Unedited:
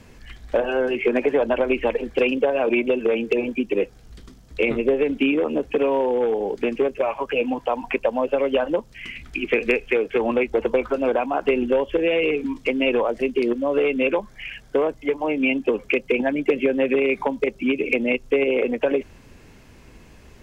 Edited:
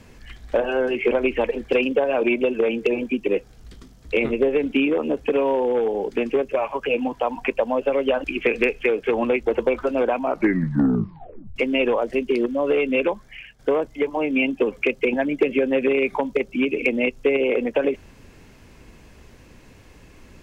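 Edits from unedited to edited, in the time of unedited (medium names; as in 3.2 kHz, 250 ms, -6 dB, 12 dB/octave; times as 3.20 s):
1.11–1.57 s: delete
8.70–9.31 s: delete
11.24 s: tape stop 1.39 s
14.15–14.66 s: fade out, to -12 dB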